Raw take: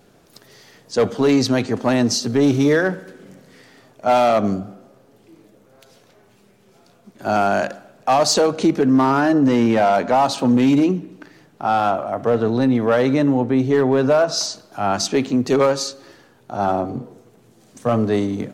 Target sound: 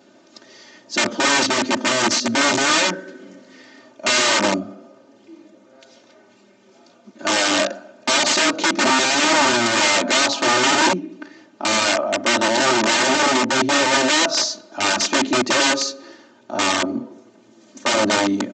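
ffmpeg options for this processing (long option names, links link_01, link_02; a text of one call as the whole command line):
ffmpeg -i in.wav -af "aresample=16000,aeval=exprs='(mod(5.31*val(0)+1,2)-1)/5.31':channel_layout=same,aresample=44100,highpass=frequency=140:width=0.5412,highpass=frequency=140:width=1.3066,aecho=1:1:3.3:1" out.wav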